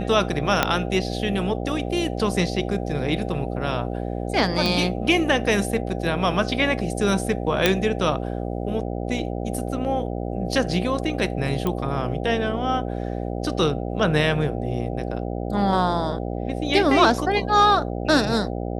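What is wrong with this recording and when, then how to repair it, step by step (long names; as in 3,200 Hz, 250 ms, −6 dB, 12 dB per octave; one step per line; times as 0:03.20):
mains buzz 60 Hz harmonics 13 −28 dBFS
0:00.63: click −2 dBFS
0:04.66: click
0:07.66: click −1 dBFS
0:11.67: click −12 dBFS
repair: click removal
hum removal 60 Hz, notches 13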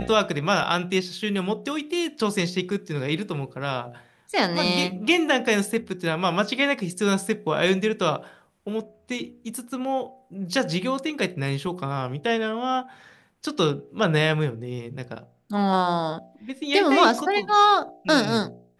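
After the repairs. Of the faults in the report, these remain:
0:00.63: click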